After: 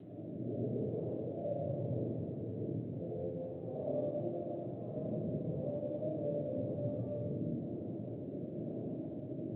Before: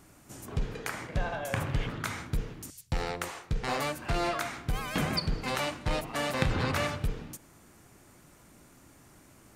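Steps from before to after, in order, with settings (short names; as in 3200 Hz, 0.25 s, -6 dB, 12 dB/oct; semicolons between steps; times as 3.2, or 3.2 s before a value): notches 50/100/150/200/250/300 Hz; auto swell 0.196 s; compressor 5:1, threshold -48 dBFS, peak gain reduction 20 dB; tube stage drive 51 dB, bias 0.3; rotary speaker horn 1 Hz; Chebyshev band-pass 100–620 Hz, order 4; 5.91–6.59 air absorption 79 m; reverb RT60 2.0 s, pre-delay 30 ms, DRR -8 dB; gain +14.5 dB; G.726 32 kbps 8000 Hz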